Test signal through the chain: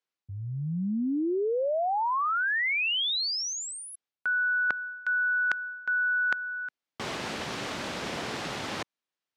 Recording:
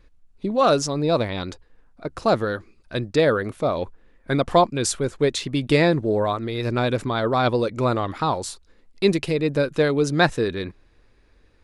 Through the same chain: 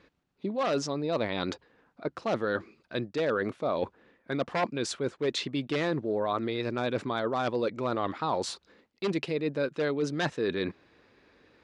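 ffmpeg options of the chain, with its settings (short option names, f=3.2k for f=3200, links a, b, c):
-af "aeval=exprs='0.251*(abs(mod(val(0)/0.251+3,4)-2)-1)':c=same,areverse,acompressor=threshold=-30dB:ratio=6,areverse,highpass=170,lowpass=4.8k,volume=3.5dB"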